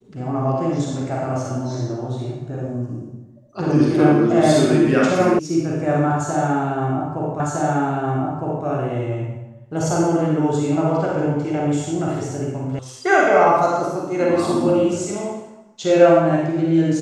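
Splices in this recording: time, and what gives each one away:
5.39 sound cut off
7.4 repeat of the last 1.26 s
12.79 sound cut off

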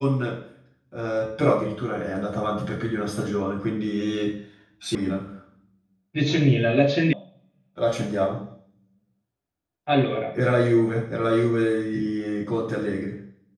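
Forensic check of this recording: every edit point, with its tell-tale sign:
4.95 sound cut off
7.13 sound cut off

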